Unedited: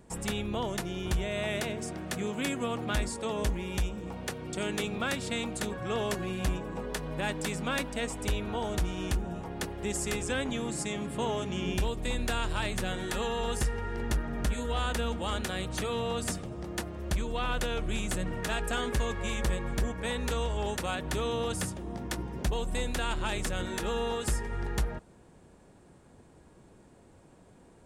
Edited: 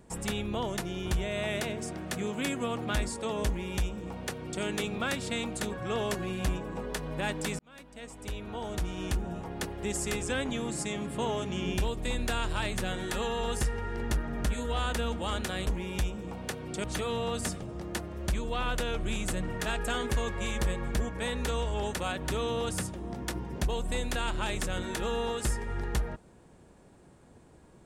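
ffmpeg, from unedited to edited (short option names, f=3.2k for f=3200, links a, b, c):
-filter_complex "[0:a]asplit=4[a][b][c][d];[a]atrim=end=7.59,asetpts=PTS-STARTPTS,afade=t=out:st=7.586:d=0.004:c=hsin[e];[b]atrim=start=7.59:end=15.672,asetpts=PTS-STARTPTS,afade=t=in:d=1.65[f];[c]atrim=start=3.458:end=4.632[g];[d]atrim=start=15.668[h];[e][f]concat=n=2:v=0:a=1[i];[i][g]acrossfade=d=0.004:c1=hsin:c2=hsin[j];[j][h]acrossfade=d=0.004:c1=hsin:c2=hsin"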